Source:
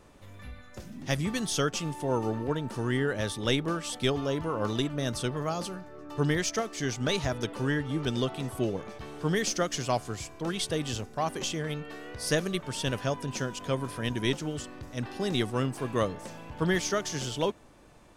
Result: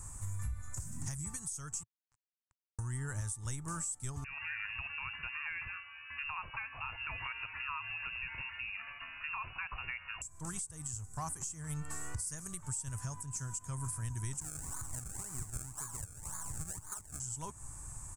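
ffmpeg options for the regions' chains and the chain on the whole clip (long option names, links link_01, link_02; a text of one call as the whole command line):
ffmpeg -i in.wav -filter_complex "[0:a]asettb=1/sr,asplit=3[link_01][link_02][link_03];[link_01]atrim=end=1.834[link_04];[link_02]atrim=start=1.83:end=2.79,asetpts=PTS-STARTPTS,afade=type=in:duration=0.004:curve=qsin,afade=type=out:start_time=0.956:duration=0.004:curve=qsin,lowpass=1300,equalizer=frequency=400:width=0.31:gain=-14,acrusher=bits=3:mix=0:aa=0.5[link_05];[link_03]atrim=start=2.786[link_06];[link_04][link_05]acrossfade=duration=0.004:curve1=hsin:curve2=qsin[link_07];[link_07][link_06]acrossfade=duration=0.004:curve1=qsin:curve2=hsin,asettb=1/sr,asplit=3[link_08][link_09][link_10];[link_08]atrim=end=4.244[link_11];[link_09]atrim=start=4.24:end=10.22,asetpts=PTS-STARTPTS,afade=type=in:duration=0.004:curve=qsin,afade=type=out:start_time=5.976:duration=0.004:curve=qsin,acompressor=threshold=-30dB:ratio=5:attack=3.2:release=140:knee=1:detection=peak,lowpass=frequency=2500:width_type=q:width=0.5098,lowpass=frequency=2500:width_type=q:width=0.6013,lowpass=frequency=2500:width_type=q:width=0.9,lowpass=frequency=2500:width_type=q:width=2.563,afreqshift=-2900[link_12];[link_10]atrim=start=10.216[link_13];[link_11][link_12]acrossfade=duration=0.004:curve1=hsin:curve2=qsin[link_14];[link_14][link_13]acrossfade=duration=0.004:curve1=qsin:curve2=hsin,asettb=1/sr,asplit=3[link_15][link_16][link_17];[link_15]atrim=end=14.404[link_18];[link_16]atrim=start=14.4:end=17.2,asetpts=PTS-STARTPTS,afade=type=in:duration=0.004:curve=qsin,afade=type=out:start_time=2.796:duration=0.004:curve=qsin,lowpass=frequency=1600:width_type=q:width=4.4,equalizer=frequency=78:width_type=o:width=2.2:gain=-9.5,acrusher=samples=31:mix=1:aa=0.000001:lfo=1:lforange=31:lforate=1.9[link_19];[link_17]atrim=start=17.196[link_20];[link_18][link_19]acrossfade=duration=0.004:curve1=hsin:curve2=qsin[link_21];[link_21][link_20]acrossfade=duration=0.004:curve1=qsin:curve2=hsin,firequalizer=gain_entry='entry(110,0);entry(210,-19);entry(520,-27);entry(950,-10);entry(3400,-26);entry(7700,14);entry(13000,-4)':delay=0.05:min_phase=1,acompressor=threshold=-48dB:ratio=6,alimiter=level_in=17.5dB:limit=-24dB:level=0:latency=1:release=337,volume=-17.5dB,volume=13.5dB" out.wav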